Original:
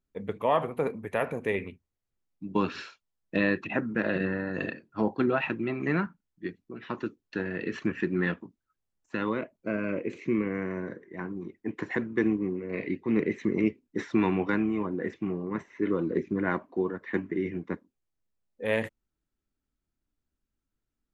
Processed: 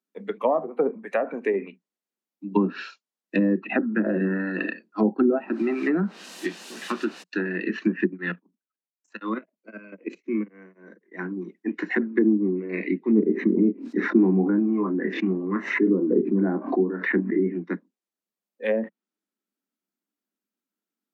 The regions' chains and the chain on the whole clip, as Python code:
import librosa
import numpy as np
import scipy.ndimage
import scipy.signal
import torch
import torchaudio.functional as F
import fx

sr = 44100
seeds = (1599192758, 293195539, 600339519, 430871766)

y = fx.high_shelf(x, sr, hz=4200.0, db=10.5, at=(5.35, 7.22), fade=0.02)
y = fx.dmg_noise_colour(y, sr, seeds[0], colour='pink', level_db=-43.0, at=(5.35, 7.22), fade=0.02)
y = fx.chain(y, sr, fx.level_steps(step_db=15),
    fx.tremolo_abs(hz=3.9), at=(8.05, 11.15))
y = fx.chain(y, sr, fx.high_shelf(hz=4800.0, db=-6.0),
    fx.doubler(ms=26.0, db=-8),
    fx.pre_swell(db_per_s=82.0), at=(13.26, 17.54))
y = scipy.signal.sosfilt(scipy.signal.butter(16, 180.0, 'highpass', fs=sr, output='sos'), y)
y = fx.env_lowpass_down(y, sr, base_hz=580.0, full_db=-23.0)
y = fx.noise_reduce_blind(y, sr, reduce_db=8)
y = y * 10.0 ** (7.0 / 20.0)